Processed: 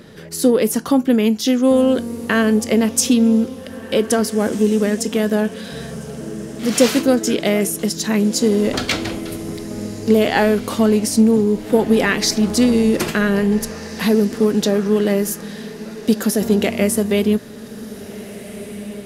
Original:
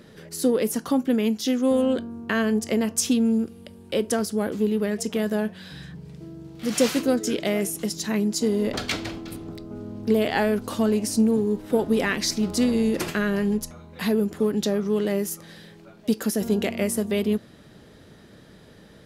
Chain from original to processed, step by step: diffused feedback echo 1.744 s, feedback 46%, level -15.5 dB; gain +7 dB

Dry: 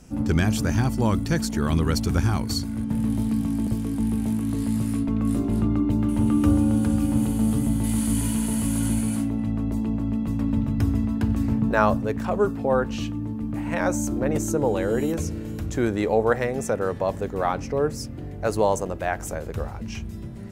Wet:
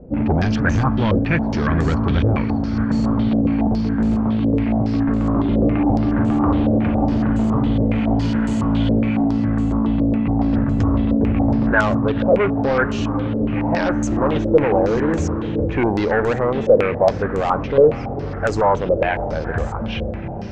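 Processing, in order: in parallel at +2 dB: limiter -14.5 dBFS, peak gain reduction 8.5 dB; on the sum: hard clip -14.5 dBFS, distortion -11 dB; air absorption 190 m; on a send: diffused feedback echo 0.479 s, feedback 59%, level -12.5 dB; on the sum: stepped low-pass 7.2 Hz 530–7400 Hz

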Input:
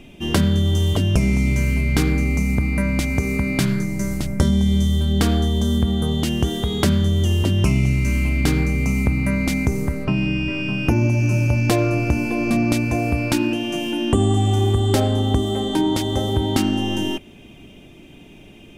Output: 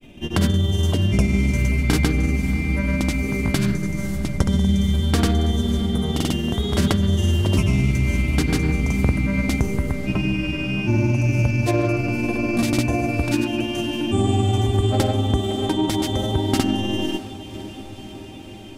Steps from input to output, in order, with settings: grains, pitch spread up and down by 0 st; diffused feedback echo 0.575 s, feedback 74%, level -16 dB

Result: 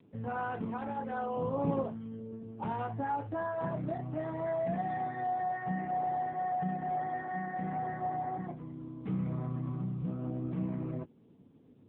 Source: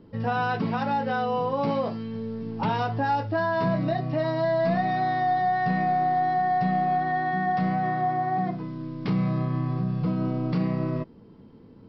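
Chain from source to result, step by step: LPF 1900 Hz 6 dB/oct; 1.36–1.85 low shelf 280 Hz +10 dB; flange 0.61 Hz, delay 6.8 ms, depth 2.4 ms, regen -50%; gain -4.5 dB; AMR-NB 6.7 kbps 8000 Hz

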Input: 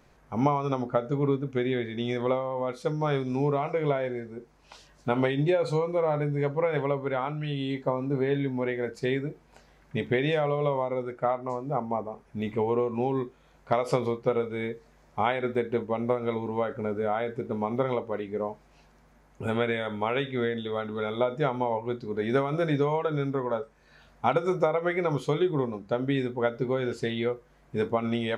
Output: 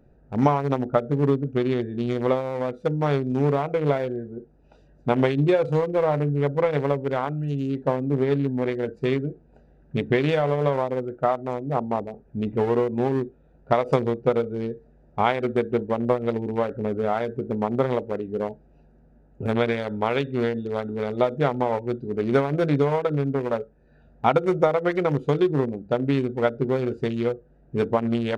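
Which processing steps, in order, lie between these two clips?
Wiener smoothing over 41 samples; gain +5.5 dB

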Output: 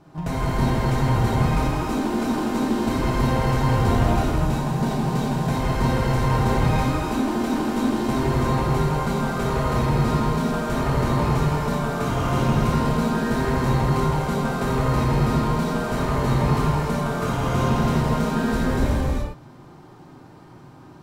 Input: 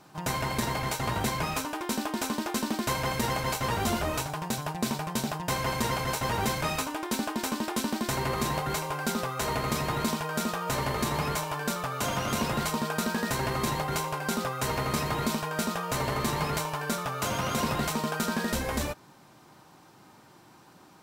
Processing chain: tilt -3 dB/oct; non-linear reverb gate 0.43 s flat, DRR -7 dB; in parallel at -12 dB: soft clip -24 dBFS, distortion -7 dB; on the sum: gain -4 dB

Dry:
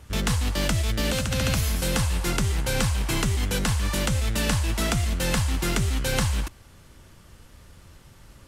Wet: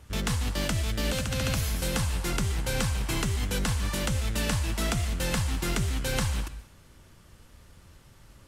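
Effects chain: plate-style reverb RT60 0.54 s, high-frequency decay 0.95×, pre-delay 0.11 s, DRR 14.5 dB; gain -4 dB

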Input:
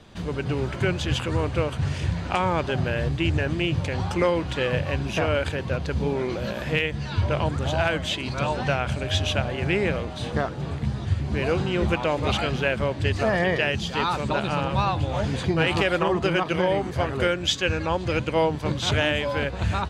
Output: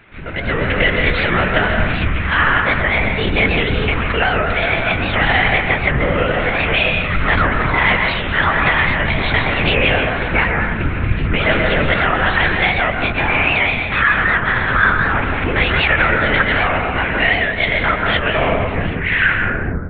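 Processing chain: tape stop at the end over 1.82 s; limiter -16 dBFS, peak gain reduction 7.5 dB; pitch shift +5 st; band shelf 1900 Hz +12.5 dB 1.3 oct; LPC vocoder at 8 kHz whisper; plate-style reverb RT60 1.1 s, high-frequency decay 0.45×, pre-delay 0.115 s, DRR 2.5 dB; AGC; record warp 78 rpm, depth 160 cents; gain -1 dB

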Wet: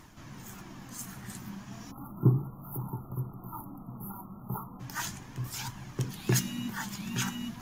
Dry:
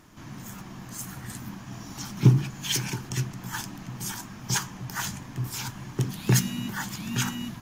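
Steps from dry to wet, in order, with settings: spectral delete 1.91–4.8, 1400–11000 Hz; reverse; upward compressor, threshold -38 dBFS; reverse; flange 0.35 Hz, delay 0.9 ms, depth 4.6 ms, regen +58%

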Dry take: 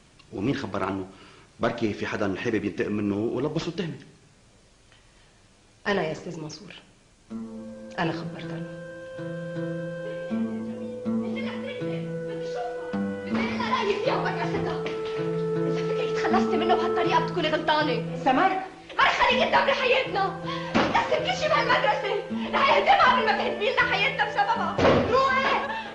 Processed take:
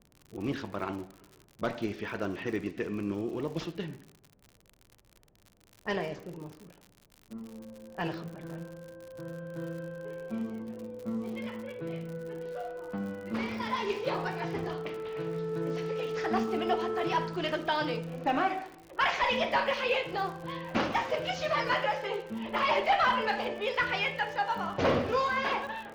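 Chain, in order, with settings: low-pass opened by the level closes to 570 Hz, open at -21 dBFS; crackle 80/s -33 dBFS; gain -7 dB

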